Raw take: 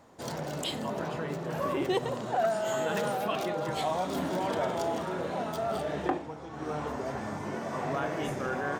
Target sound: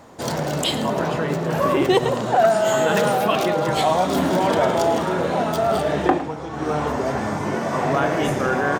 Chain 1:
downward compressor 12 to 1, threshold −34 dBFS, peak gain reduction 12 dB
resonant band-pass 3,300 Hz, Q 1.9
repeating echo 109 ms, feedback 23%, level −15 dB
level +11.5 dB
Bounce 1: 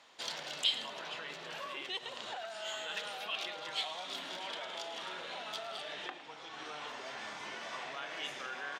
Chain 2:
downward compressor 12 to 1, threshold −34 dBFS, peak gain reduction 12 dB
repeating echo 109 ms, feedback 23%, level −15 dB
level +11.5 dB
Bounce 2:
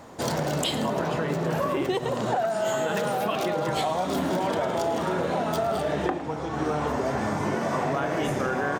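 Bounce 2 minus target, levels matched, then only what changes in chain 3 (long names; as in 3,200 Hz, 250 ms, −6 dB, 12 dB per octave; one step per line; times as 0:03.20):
downward compressor: peak gain reduction +12 dB
remove: downward compressor 12 to 1, threshold −34 dBFS, peak gain reduction 12 dB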